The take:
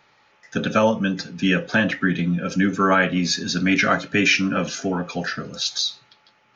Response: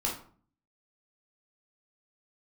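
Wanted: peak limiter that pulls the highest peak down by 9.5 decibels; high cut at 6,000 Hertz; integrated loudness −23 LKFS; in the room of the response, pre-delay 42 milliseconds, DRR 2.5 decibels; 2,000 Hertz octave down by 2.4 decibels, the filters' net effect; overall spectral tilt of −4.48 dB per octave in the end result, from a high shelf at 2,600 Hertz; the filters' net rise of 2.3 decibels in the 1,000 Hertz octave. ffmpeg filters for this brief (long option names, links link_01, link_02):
-filter_complex "[0:a]lowpass=6000,equalizer=frequency=1000:width_type=o:gain=5,equalizer=frequency=2000:width_type=o:gain=-7.5,highshelf=frequency=2600:gain=5.5,alimiter=limit=-13.5dB:level=0:latency=1,asplit=2[link_01][link_02];[1:a]atrim=start_sample=2205,adelay=42[link_03];[link_02][link_03]afir=irnorm=-1:irlink=0,volume=-8dB[link_04];[link_01][link_04]amix=inputs=2:normalize=0,volume=-1dB"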